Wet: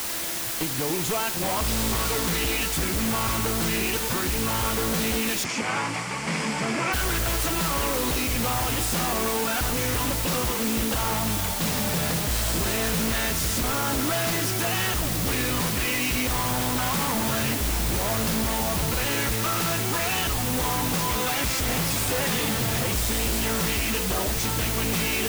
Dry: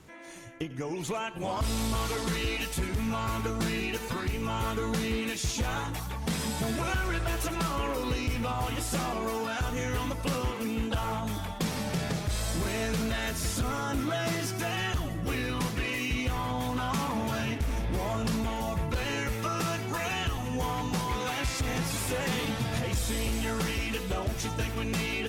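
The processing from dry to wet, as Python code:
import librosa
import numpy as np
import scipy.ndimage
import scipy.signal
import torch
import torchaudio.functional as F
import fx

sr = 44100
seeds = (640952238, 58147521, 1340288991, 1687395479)

y = 10.0 ** (-27.5 / 20.0) * (np.abs((x / 10.0 ** (-27.5 / 20.0) + 3.0) % 4.0 - 2.0) - 1.0)
y = fx.quant_dither(y, sr, seeds[0], bits=6, dither='triangular')
y = fx.cabinet(y, sr, low_hz=130.0, low_slope=24, high_hz=7600.0, hz=(1100.0, 2200.0, 3800.0, 6300.0), db=(4, 8, -10, -5), at=(5.43, 6.92), fade=0.02)
y = F.gain(torch.from_numpy(y), 6.0).numpy()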